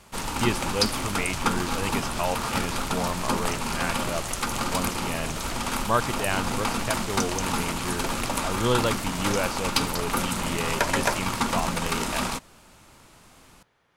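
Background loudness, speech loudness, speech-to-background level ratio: −27.5 LKFS, −31.5 LKFS, −4.0 dB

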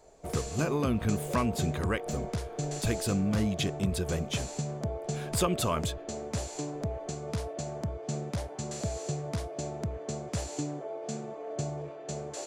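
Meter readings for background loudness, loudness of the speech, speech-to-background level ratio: −36.0 LKFS, −32.0 LKFS, 4.0 dB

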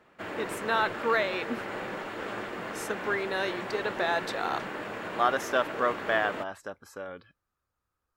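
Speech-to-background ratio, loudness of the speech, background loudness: 6.5 dB, −30.0 LKFS, −36.5 LKFS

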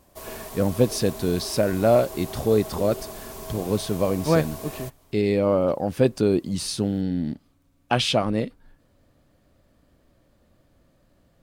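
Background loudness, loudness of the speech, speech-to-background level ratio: −37.0 LKFS, −24.0 LKFS, 13.0 dB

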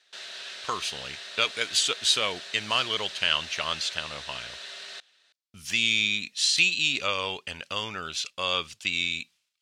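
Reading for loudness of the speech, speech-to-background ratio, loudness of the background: −26.0 LKFS, 12.0 dB, −38.0 LKFS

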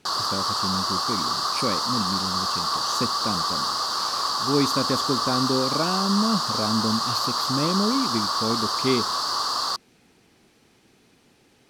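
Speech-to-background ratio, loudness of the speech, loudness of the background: −4.0 dB, −28.0 LKFS, −24.0 LKFS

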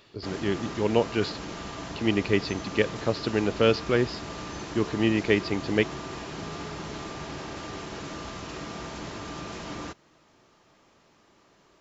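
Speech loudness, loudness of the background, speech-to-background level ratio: −27.0 LKFS, −37.5 LKFS, 10.5 dB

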